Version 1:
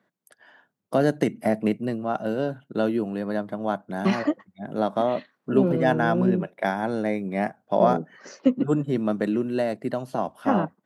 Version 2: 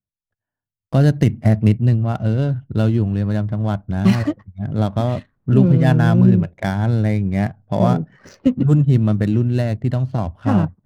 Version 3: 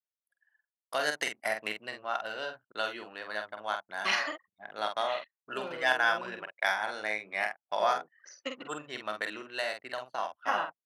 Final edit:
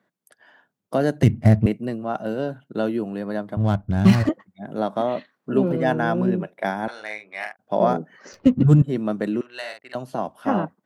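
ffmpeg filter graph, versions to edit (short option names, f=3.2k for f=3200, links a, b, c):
-filter_complex "[1:a]asplit=3[a][b][c];[2:a]asplit=2[d][e];[0:a]asplit=6[f][g][h][i][j][k];[f]atrim=end=1.232[l];[a]atrim=start=1.228:end=1.662[m];[g]atrim=start=1.658:end=3.572[n];[b]atrim=start=3.568:end=4.292[o];[h]atrim=start=4.288:end=6.882[p];[d]atrim=start=6.878:end=7.592[q];[i]atrim=start=7.588:end=8.332[r];[c]atrim=start=8.328:end=8.822[s];[j]atrim=start=8.818:end=9.412[t];[e]atrim=start=9.408:end=9.952[u];[k]atrim=start=9.948[v];[l][m]acrossfade=d=0.004:c1=hsin:c2=hsin[w];[w][n]acrossfade=d=0.004:c1=hsin:c2=hsin[x];[x][o]acrossfade=d=0.004:c1=hsin:c2=hsin[y];[y][p]acrossfade=d=0.004:c1=hsin:c2=hsin[z];[z][q]acrossfade=d=0.004:c1=hsin:c2=hsin[aa];[aa][r]acrossfade=d=0.004:c1=hsin:c2=hsin[ab];[ab][s]acrossfade=d=0.004:c1=hsin:c2=hsin[ac];[ac][t]acrossfade=d=0.004:c1=hsin:c2=hsin[ad];[ad][u]acrossfade=d=0.004:c1=hsin:c2=hsin[ae];[ae][v]acrossfade=d=0.004:c1=hsin:c2=hsin"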